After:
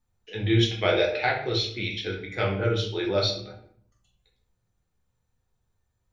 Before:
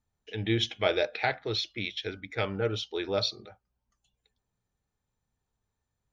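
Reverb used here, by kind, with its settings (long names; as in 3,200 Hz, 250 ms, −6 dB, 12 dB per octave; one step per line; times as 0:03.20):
rectangular room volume 81 cubic metres, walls mixed, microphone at 0.97 metres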